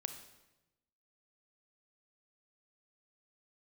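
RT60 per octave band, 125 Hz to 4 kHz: 1.3, 1.2, 1.1, 0.95, 0.90, 0.85 s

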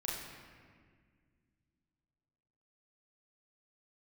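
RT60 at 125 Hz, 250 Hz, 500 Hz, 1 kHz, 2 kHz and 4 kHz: 3.1, 3.0, 2.0, 1.6, 1.8, 1.2 s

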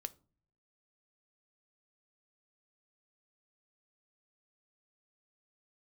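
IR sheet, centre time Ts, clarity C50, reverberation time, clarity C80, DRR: 2 ms, 22.0 dB, not exponential, 27.5 dB, 12.5 dB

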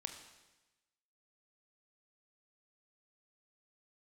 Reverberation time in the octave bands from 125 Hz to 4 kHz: 1.2, 1.1, 1.1, 1.1, 1.1, 1.1 s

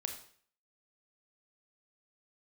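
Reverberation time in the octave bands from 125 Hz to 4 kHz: 0.55, 0.50, 0.50, 0.50, 0.50, 0.50 s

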